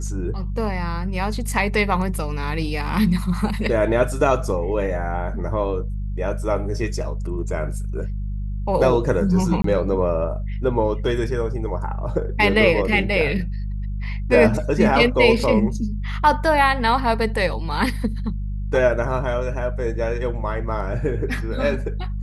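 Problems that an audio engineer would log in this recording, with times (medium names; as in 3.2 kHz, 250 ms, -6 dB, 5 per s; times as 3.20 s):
hum 50 Hz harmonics 4 -26 dBFS
9.62–9.64 s: dropout 23 ms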